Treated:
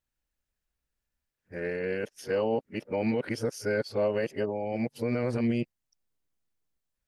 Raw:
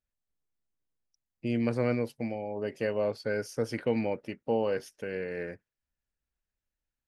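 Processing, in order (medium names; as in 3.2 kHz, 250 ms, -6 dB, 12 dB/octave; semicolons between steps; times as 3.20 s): reverse the whole clip; peak limiter -22.5 dBFS, peak gain reduction 7.5 dB; trim +3.5 dB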